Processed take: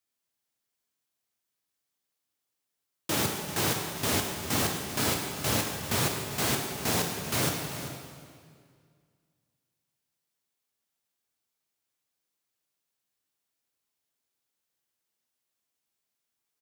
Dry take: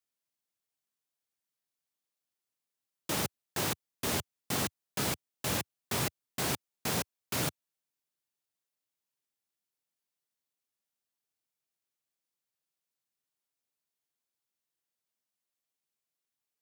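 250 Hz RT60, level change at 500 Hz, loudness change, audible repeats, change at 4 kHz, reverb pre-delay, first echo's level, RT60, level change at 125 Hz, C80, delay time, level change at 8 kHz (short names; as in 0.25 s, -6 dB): 2.2 s, +5.5 dB, +5.0 dB, 1, +5.5 dB, 5 ms, -13.0 dB, 2.1 s, +6.0 dB, 4.0 dB, 0.393 s, +5.5 dB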